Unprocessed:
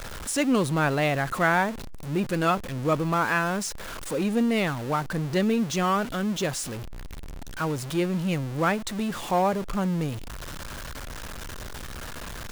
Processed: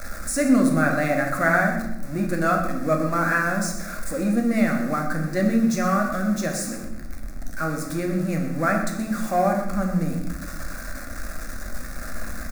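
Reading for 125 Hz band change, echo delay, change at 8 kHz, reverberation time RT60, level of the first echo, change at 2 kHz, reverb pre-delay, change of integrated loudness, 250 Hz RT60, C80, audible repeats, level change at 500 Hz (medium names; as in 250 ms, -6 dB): +1.5 dB, 124 ms, +2.5 dB, 0.90 s, -12.5 dB, +4.0 dB, 5 ms, +3.0 dB, 1.5 s, 7.5 dB, 1, +2.0 dB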